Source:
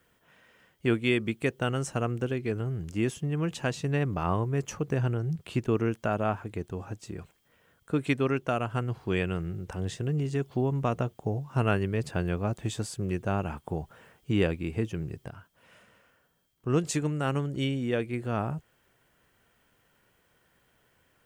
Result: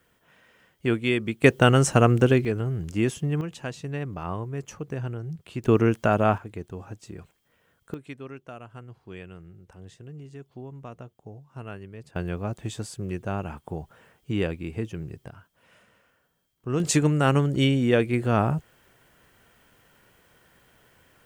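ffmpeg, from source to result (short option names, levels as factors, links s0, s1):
-af "asetnsamples=n=441:p=0,asendcmd='1.44 volume volume 11.5dB;2.45 volume volume 4dB;3.41 volume volume -4dB;5.64 volume volume 7dB;6.38 volume volume -1.5dB;7.94 volume volume -13dB;12.16 volume volume -1dB;16.8 volume volume 8dB',volume=1.19"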